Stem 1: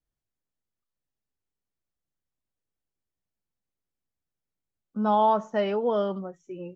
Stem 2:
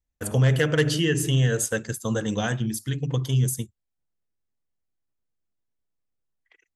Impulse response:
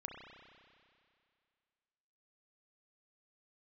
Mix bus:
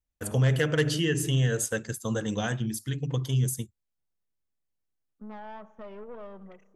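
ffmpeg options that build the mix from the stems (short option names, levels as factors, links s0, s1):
-filter_complex "[0:a]lowpass=f=1300:p=1,acompressor=threshold=0.0355:ratio=3,aeval=exprs='(tanh(28.2*val(0)+0.65)-tanh(0.65))/28.2':c=same,adelay=250,volume=0.376,asplit=2[s0][s1];[s1]volume=0.2[s2];[1:a]volume=0.668[s3];[2:a]atrim=start_sample=2205[s4];[s2][s4]afir=irnorm=-1:irlink=0[s5];[s0][s3][s5]amix=inputs=3:normalize=0"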